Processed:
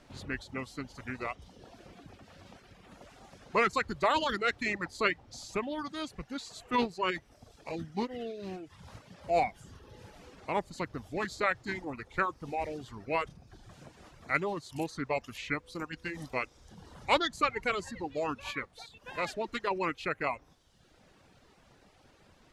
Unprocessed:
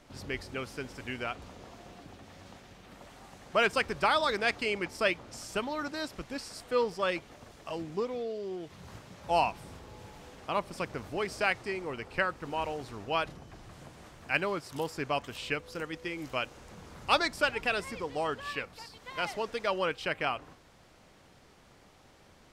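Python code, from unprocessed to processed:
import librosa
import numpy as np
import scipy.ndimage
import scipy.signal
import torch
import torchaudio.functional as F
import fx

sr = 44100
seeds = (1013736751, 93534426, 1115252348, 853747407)

y = fx.formant_shift(x, sr, semitones=-3)
y = fx.dereverb_blind(y, sr, rt60_s=0.95)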